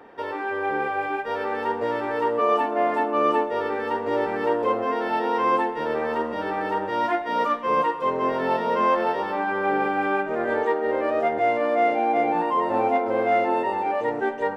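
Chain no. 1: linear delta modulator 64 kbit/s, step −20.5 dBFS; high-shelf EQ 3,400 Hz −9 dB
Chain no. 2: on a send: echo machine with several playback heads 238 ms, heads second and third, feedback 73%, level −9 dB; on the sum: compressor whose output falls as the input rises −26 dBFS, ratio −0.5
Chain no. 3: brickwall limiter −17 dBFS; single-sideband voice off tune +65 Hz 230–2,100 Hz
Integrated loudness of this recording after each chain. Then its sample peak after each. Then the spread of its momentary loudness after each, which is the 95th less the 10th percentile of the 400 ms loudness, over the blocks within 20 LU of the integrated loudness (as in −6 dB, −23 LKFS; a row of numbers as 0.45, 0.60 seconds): −23.5, −26.5, −26.0 LKFS; −9.5, −10.5, −14.0 dBFS; 4, 9, 3 LU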